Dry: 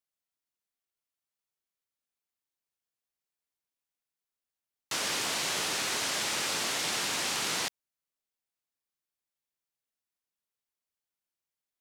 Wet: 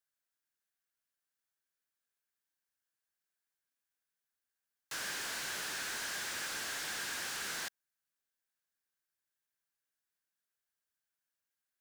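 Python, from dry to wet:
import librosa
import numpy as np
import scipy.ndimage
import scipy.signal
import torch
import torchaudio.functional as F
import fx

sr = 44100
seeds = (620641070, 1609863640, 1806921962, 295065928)

y = fx.high_shelf(x, sr, hz=4500.0, db=4.5)
y = 10.0 ** (-36.0 / 20.0) * np.tanh(y / 10.0 ** (-36.0 / 20.0))
y = fx.peak_eq(y, sr, hz=1600.0, db=12.0, octaves=0.38)
y = y * 10.0 ** (-3.5 / 20.0)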